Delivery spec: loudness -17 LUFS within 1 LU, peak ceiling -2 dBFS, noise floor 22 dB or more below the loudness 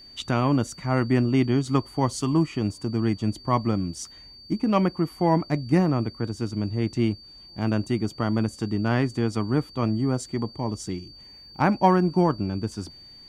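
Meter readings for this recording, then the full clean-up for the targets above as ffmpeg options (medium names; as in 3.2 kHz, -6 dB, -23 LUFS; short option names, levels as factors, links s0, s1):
steady tone 4.6 kHz; tone level -45 dBFS; loudness -25.0 LUFS; peak level -6.0 dBFS; loudness target -17.0 LUFS
-> -af "bandreject=f=4600:w=30"
-af "volume=2.51,alimiter=limit=0.794:level=0:latency=1"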